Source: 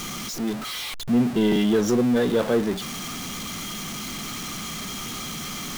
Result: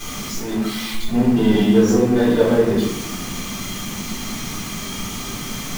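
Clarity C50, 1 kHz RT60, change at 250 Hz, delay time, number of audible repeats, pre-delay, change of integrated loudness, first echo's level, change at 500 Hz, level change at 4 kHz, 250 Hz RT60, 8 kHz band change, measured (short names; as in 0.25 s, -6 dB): 2.0 dB, 0.70 s, +5.5 dB, none, none, 3 ms, +5.0 dB, none, +5.5 dB, +2.5 dB, 1.5 s, +3.5 dB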